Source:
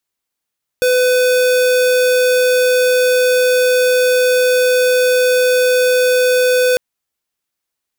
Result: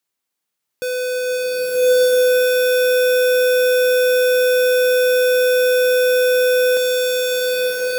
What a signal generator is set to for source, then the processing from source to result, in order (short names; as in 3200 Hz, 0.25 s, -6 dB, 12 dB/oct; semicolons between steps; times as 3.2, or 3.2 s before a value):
tone square 502 Hz -12.5 dBFS 5.95 s
HPF 110 Hz 12 dB/oct; limiter -18.5 dBFS; bloom reverb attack 1.24 s, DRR -7.5 dB